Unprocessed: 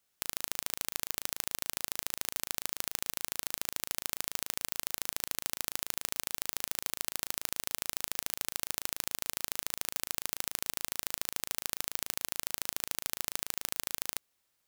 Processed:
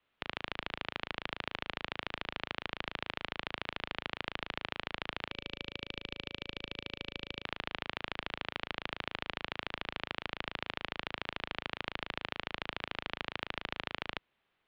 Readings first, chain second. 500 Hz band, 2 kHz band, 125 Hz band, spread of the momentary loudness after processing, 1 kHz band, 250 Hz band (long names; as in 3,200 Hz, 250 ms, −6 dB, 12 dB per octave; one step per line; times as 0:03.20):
+5.0 dB, +4.5 dB, +5.0 dB, 2 LU, +4.5 dB, +5.0 dB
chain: single-sideband voice off tune −150 Hz 150–3,500 Hz
gain on a spectral selection 0:05.31–0:07.45, 570–2,300 Hz −10 dB
level +5 dB